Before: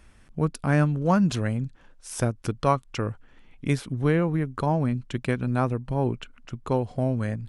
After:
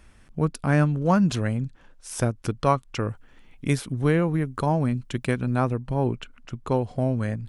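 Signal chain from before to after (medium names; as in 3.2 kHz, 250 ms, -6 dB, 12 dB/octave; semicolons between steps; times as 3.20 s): 3.09–5.42 s: treble shelf 8 kHz +8.5 dB; trim +1 dB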